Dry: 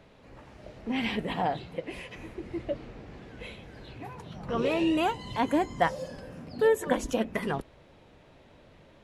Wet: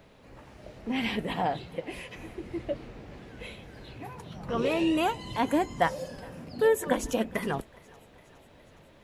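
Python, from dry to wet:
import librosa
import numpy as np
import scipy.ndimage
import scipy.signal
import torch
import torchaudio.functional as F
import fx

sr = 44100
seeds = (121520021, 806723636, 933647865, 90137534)

p1 = fx.high_shelf(x, sr, hz=11000.0, db=11.5)
y = p1 + fx.echo_thinned(p1, sr, ms=414, feedback_pct=68, hz=480.0, wet_db=-24.0, dry=0)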